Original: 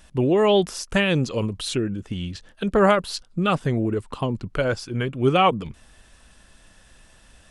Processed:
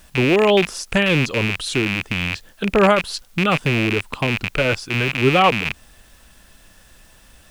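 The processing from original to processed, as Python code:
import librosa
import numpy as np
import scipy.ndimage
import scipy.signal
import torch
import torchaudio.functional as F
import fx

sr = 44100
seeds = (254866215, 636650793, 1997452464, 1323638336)

y = fx.rattle_buzz(x, sr, strikes_db=-35.0, level_db=-12.0)
y = fx.quant_dither(y, sr, seeds[0], bits=10, dither='triangular')
y = y * 10.0 ** (2.5 / 20.0)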